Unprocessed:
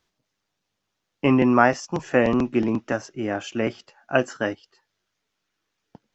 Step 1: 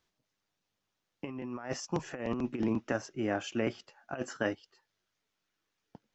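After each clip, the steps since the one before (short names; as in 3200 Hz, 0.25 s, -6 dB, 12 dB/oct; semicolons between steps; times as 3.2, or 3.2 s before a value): negative-ratio compressor -23 dBFS, ratio -0.5; gain -9 dB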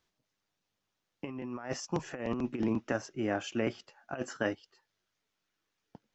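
nothing audible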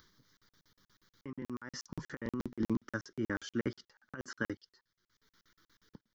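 upward compressor, threshold -52 dBFS; fixed phaser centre 2600 Hz, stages 6; crackling interface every 0.12 s, samples 2048, zero, from 0.37; gain +1 dB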